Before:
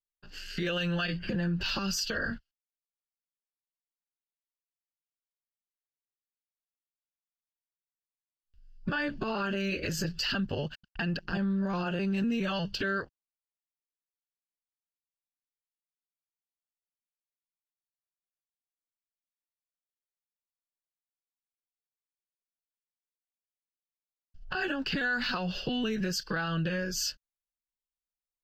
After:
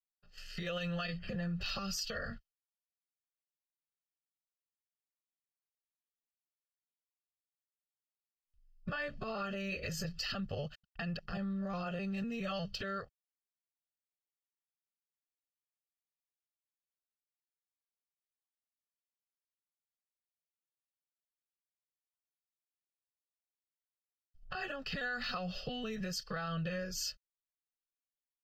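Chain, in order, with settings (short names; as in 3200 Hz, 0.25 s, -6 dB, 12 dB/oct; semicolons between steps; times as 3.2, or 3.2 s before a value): gate -43 dBFS, range -8 dB; comb 1.6 ms, depth 72%; gain -8 dB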